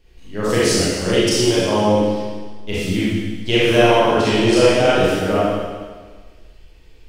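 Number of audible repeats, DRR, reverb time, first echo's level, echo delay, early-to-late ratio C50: none, -9.5 dB, 1.5 s, none, none, -4.0 dB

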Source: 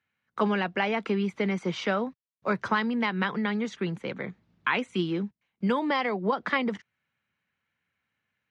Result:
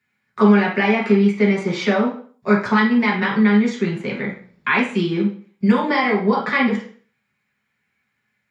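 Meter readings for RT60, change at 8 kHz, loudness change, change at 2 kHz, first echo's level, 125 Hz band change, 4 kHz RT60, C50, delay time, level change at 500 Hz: 0.45 s, n/a, +10.5 dB, +9.5 dB, none, +11.0 dB, 0.40 s, 6.0 dB, none, +9.5 dB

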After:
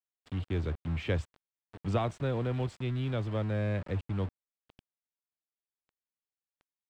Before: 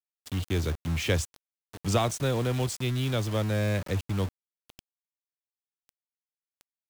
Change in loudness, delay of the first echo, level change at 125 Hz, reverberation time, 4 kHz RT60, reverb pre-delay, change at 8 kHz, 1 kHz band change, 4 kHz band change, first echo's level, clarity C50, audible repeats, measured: -4.5 dB, none, -3.5 dB, none, none, none, under -20 dB, -5.0 dB, -12.0 dB, none, none, none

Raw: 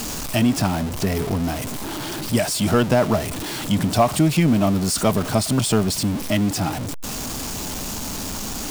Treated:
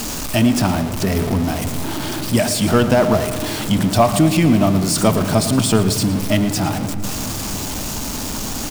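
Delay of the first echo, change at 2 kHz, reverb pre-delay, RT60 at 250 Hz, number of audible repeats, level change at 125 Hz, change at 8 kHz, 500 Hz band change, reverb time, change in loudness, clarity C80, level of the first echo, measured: 0.113 s, +3.5 dB, 3 ms, 5.1 s, 2, +3.5 dB, +3.0 dB, +4.0 dB, 3.0 s, +3.5 dB, 10.0 dB, -15.0 dB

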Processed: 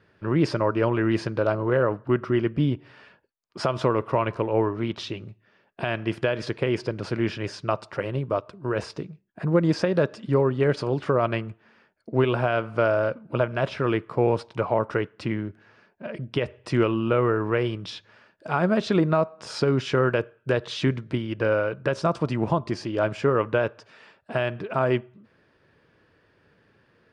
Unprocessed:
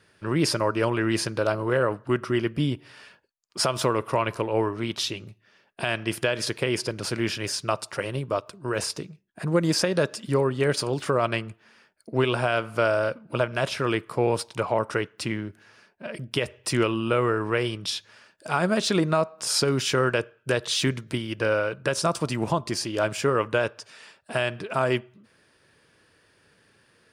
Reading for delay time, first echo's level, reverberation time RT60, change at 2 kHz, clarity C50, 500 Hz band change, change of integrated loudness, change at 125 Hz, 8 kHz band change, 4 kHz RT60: none, none, none, -2.0 dB, none, +1.5 dB, +0.5 dB, +2.5 dB, under -15 dB, none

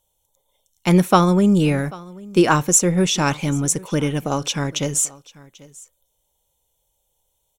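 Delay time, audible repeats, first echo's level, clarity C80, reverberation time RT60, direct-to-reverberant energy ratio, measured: 0.79 s, 1, -22.0 dB, none, none, none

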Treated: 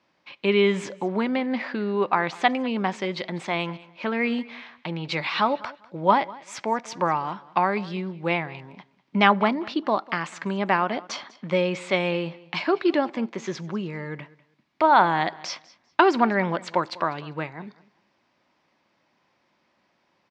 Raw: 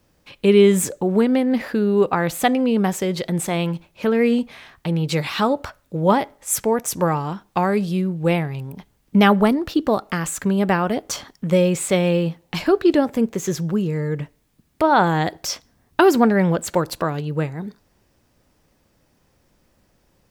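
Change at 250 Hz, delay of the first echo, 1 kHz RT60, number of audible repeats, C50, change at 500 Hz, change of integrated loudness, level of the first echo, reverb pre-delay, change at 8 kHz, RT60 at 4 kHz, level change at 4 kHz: -8.0 dB, 0.198 s, none, 2, none, -6.5 dB, -5.0 dB, -21.0 dB, none, -16.0 dB, none, -2.0 dB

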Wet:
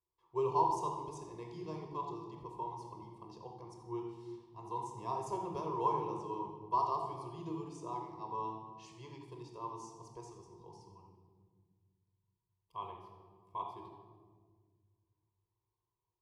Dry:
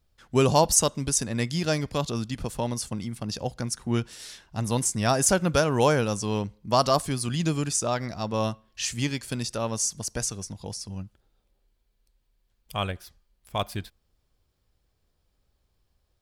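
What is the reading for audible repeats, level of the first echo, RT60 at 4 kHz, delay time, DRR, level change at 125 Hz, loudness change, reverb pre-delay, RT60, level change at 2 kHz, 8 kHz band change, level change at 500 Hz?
none, none, 1.0 s, none, 2.0 dB, -20.5 dB, -13.5 dB, 25 ms, 1.6 s, -29.0 dB, -32.5 dB, -14.5 dB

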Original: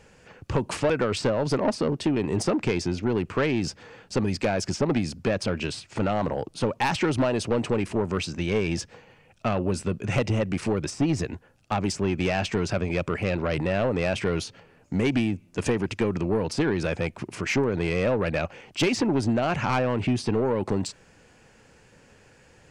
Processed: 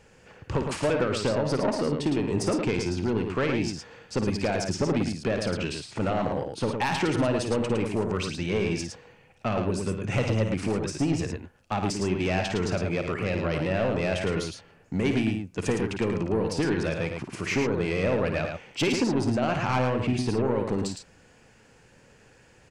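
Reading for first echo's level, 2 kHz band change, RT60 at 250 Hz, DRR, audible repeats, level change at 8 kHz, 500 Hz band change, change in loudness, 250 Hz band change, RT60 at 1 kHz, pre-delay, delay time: -9.0 dB, -1.0 dB, none, none, 2, -1.0 dB, -1.0 dB, -1.0 dB, -1.0 dB, none, none, 54 ms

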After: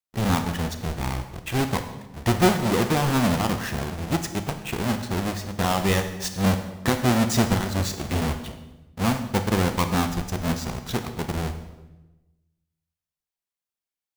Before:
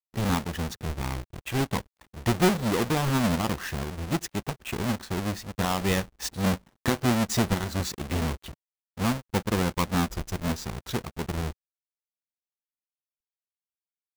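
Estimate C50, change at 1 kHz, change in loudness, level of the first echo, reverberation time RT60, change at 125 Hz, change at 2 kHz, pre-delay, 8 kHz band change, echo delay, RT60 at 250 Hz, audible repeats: 9.5 dB, +4.5 dB, +3.5 dB, none, 1.0 s, +3.5 dB, +3.0 dB, 25 ms, +3.0 dB, none, 1.3 s, none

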